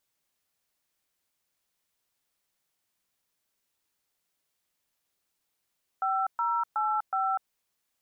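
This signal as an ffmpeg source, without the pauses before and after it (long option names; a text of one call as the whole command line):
ffmpeg -f lavfi -i "aevalsrc='0.0422*clip(min(mod(t,0.369),0.247-mod(t,0.369))/0.002,0,1)*(eq(floor(t/0.369),0)*(sin(2*PI*770*mod(t,0.369))+sin(2*PI*1336*mod(t,0.369)))+eq(floor(t/0.369),1)*(sin(2*PI*941*mod(t,0.369))+sin(2*PI*1336*mod(t,0.369)))+eq(floor(t/0.369),2)*(sin(2*PI*852*mod(t,0.369))+sin(2*PI*1336*mod(t,0.369)))+eq(floor(t/0.369),3)*(sin(2*PI*770*mod(t,0.369))+sin(2*PI*1336*mod(t,0.369))))':duration=1.476:sample_rate=44100" out.wav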